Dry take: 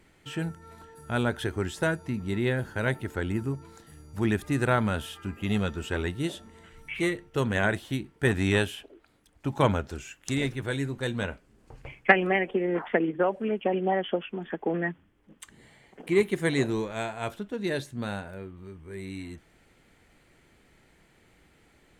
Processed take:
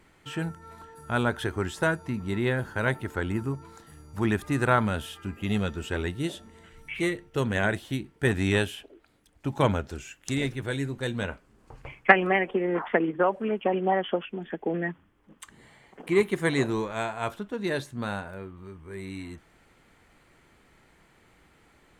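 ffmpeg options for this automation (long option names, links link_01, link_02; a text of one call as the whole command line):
ffmpeg -i in.wav -af "asetnsamples=nb_out_samples=441:pad=0,asendcmd='4.85 equalizer g -1;11.29 equalizer g 6;14.25 equalizer g -5;14.89 equalizer g 6',equalizer=frequency=1100:width_type=o:width=0.9:gain=5.5" out.wav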